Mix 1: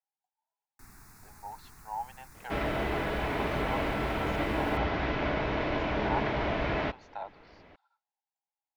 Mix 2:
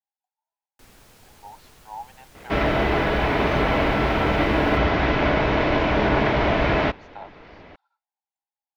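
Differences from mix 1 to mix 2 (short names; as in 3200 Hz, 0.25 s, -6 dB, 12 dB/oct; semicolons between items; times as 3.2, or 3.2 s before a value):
first sound: remove fixed phaser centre 1300 Hz, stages 4; second sound +10.0 dB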